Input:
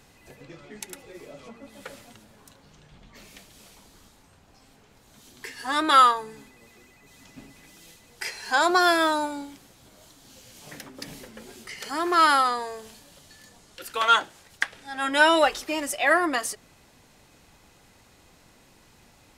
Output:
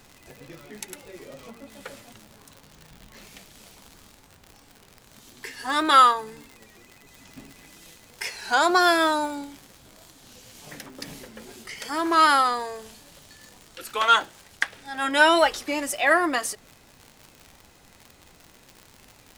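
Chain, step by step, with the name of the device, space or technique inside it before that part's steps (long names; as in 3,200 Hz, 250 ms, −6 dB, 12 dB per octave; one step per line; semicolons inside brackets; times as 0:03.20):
warped LP (wow of a warped record 33 1/3 rpm, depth 100 cents; surface crackle 96 per second −35 dBFS; pink noise bed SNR 36 dB)
level +1 dB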